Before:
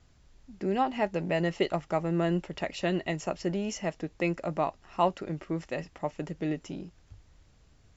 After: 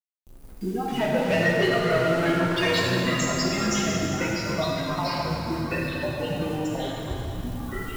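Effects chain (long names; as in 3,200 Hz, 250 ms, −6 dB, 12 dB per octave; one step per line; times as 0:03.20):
spectral dynamics exaggerated over time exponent 3
camcorder AGC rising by 20 dB per second
high-shelf EQ 3,700 Hz +10.5 dB
in parallel at +1 dB: brickwall limiter −26 dBFS, peak gain reduction 14 dB
on the sum: downward compressor 16 to 1, threshold −32 dBFS, peak gain reduction 14 dB
bit reduction 9 bits
0:00.88–0:02.79: mid-hump overdrive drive 22 dB, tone 2,600 Hz, clips at −22 dBFS
delay with pitch and tempo change per echo 93 ms, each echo −5 semitones, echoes 3, each echo −6 dB
dense smooth reverb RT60 3.6 s, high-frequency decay 0.8×, DRR −5 dB
level +3.5 dB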